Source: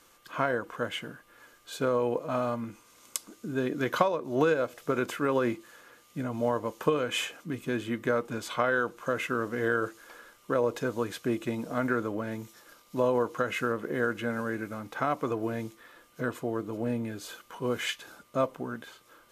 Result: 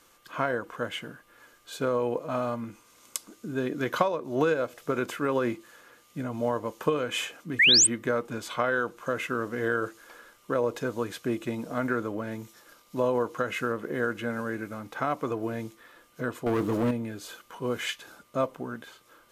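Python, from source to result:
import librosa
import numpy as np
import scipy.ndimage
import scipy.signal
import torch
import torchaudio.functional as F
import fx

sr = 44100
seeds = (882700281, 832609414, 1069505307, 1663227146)

y = fx.spec_paint(x, sr, seeds[0], shape='rise', start_s=7.59, length_s=0.28, low_hz=1700.0, high_hz=9000.0, level_db=-18.0)
y = fx.leveller(y, sr, passes=3, at=(16.46, 16.91))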